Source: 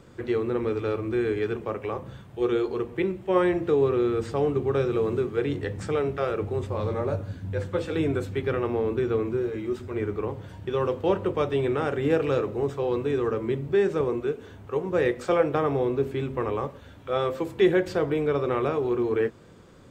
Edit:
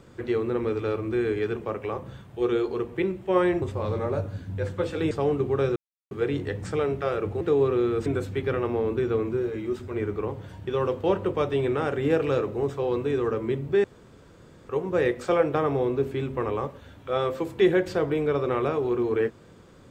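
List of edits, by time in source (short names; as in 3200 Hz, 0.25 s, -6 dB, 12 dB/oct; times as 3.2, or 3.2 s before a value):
3.62–4.27 swap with 6.57–8.06
4.92–5.27 mute
13.84–14.69 room tone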